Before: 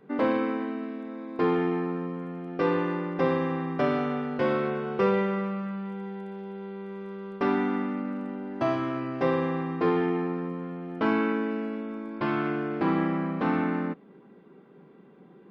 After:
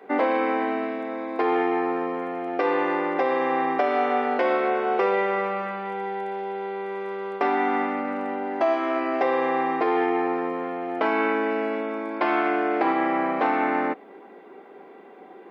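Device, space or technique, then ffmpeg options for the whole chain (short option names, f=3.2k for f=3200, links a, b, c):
laptop speaker: -af "highpass=f=300:w=0.5412,highpass=f=300:w=1.3066,equalizer=f=740:t=o:w=0.52:g=10.5,equalizer=f=2.1k:t=o:w=0.54:g=6.5,alimiter=limit=-20.5dB:level=0:latency=1:release=491,volume=8dB"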